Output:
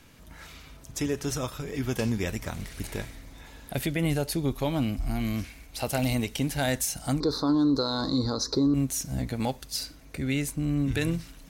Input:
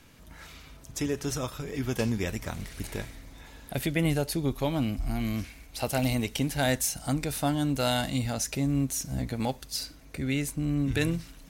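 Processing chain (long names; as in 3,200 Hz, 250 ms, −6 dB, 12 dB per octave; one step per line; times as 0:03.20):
0:07.20–0:08.74: drawn EQ curve 200 Hz 0 dB, 300 Hz +12 dB, 470 Hz +13 dB, 680 Hz −5 dB, 1,100 Hz +14 dB, 2,800 Hz −28 dB, 4,100 Hz +15 dB, 8,800 Hz −19 dB
brickwall limiter −17.5 dBFS, peak gain reduction 10.5 dB
level +1 dB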